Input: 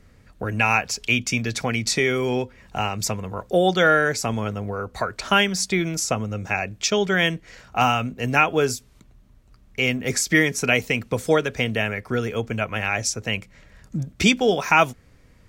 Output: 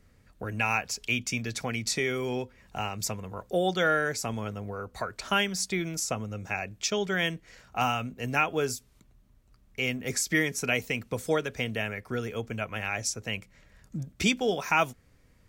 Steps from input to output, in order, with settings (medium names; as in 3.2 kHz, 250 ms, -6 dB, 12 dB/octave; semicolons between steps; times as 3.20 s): treble shelf 9 kHz +6.5 dB; trim -8 dB